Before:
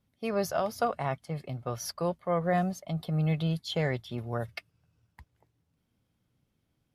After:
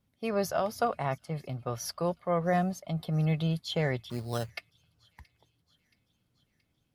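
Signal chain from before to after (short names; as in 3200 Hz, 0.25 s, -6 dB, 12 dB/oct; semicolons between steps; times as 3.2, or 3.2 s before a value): thin delay 0.675 s, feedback 57%, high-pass 3000 Hz, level -22 dB; 4.1–4.5 sample-rate reducer 4600 Hz, jitter 0%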